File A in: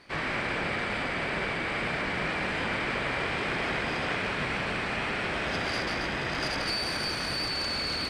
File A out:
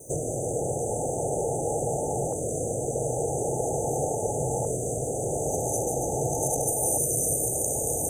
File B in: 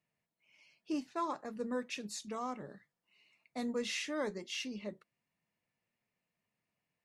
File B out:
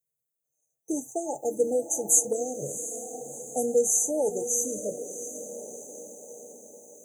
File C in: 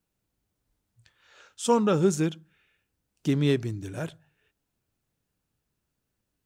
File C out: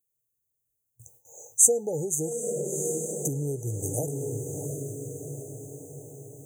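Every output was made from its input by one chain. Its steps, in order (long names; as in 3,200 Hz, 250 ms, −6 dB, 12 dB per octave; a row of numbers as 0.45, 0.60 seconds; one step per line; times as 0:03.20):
on a send: feedback delay with all-pass diffusion 706 ms, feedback 53%, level −12 dB
on the sum: noise gate with hold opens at −53 dBFS
downward compressor 12 to 1, threshold −34 dBFS
RIAA equalisation recording
brick-wall band-stop 880–6,000 Hz
low shelf with overshoot 160 Hz +6.5 dB, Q 3
hollow resonant body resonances 470/930/2,900 Hz, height 8 dB
auto-filter notch saw up 0.43 Hz 800–1,600 Hz
loudness normalisation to −27 LKFS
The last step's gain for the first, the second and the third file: +16.5, +15.5, +11.0 decibels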